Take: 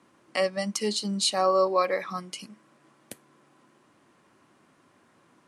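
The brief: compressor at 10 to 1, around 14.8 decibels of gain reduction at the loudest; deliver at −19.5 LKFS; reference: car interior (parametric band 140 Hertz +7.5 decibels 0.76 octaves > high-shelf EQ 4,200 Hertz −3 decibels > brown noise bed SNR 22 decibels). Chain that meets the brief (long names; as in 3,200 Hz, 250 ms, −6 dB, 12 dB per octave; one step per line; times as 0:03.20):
downward compressor 10 to 1, threshold −33 dBFS
parametric band 140 Hz +7.5 dB 0.76 octaves
high-shelf EQ 4,200 Hz −3 dB
brown noise bed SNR 22 dB
level +18.5 dB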